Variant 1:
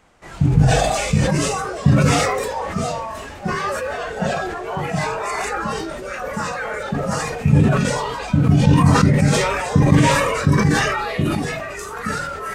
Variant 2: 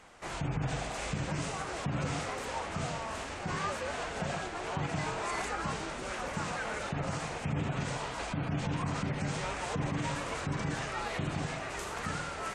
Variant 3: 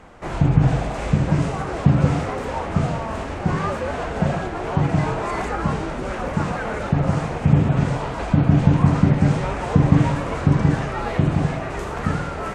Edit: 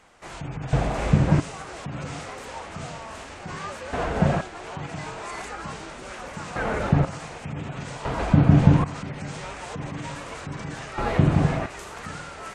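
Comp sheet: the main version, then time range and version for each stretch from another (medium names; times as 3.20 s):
2
0.73–1.40 s: from 3
3.93–4.41 s: from 3
6.56–7.05 s: from 3
8.05–8.84 s: from 3
10.98–11.66 s: from 3
not used: 1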